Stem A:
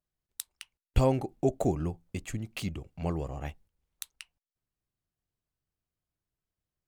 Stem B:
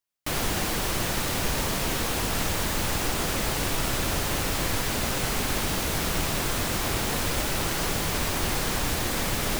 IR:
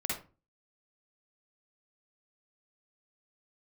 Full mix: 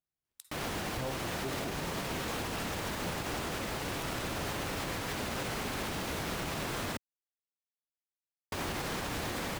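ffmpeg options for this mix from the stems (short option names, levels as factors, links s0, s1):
-filter_complex "[0:a]volume=0.447,asplit=2[s0][s1];[s1]volume=0.178[s2];[1:a]highshelf=f=4800:g=-9,adelay=250,volume=0.841,asplit=3[s3][s4][s5];[s3]atrim=end=6.97,asetpts=PTS-STARTPTS,afade=t=out:st=6.966:d=0.004:c=hsin[s6];[s4]atrim=start=6.97:end=8.52,asetpts=PTS-STARTPTS,volume=0[s7];[s5]atrim=start=8.52,asetpts=PTS-STARTPTS,afade=t=in:d=0.004:c=hsin[s8];[s6][s7][s8]concat=n=3:v=0:a=1[s9];[2:a]atrim=start_sample=2205[s10];[s2][s10]afir=irnorm=-1:irlink=0[s11];[s0][s9][s11]amix=inputs=3:normalize=0,highpass=f=99:p=1,alimiter=level_in=1.33:limit=0.0631:level=0:latency=1:release=99,volume=0.75"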